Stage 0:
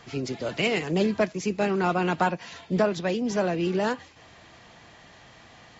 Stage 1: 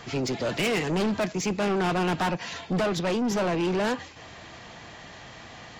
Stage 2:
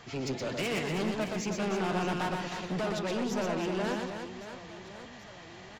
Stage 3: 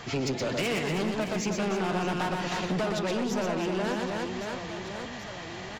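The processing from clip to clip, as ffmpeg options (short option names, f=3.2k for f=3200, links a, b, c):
-af "asoftclip=type=tanh:threshold=-29dB,volume=6.5dB"
-af "aecho=1:1:120|312|619.2|1111|1897:0.631|0.398|0.251|0.158|0.1,volume=-7.5dB"
-af "acompressor=threshold=-36dB:ratio=4,volume=9dB"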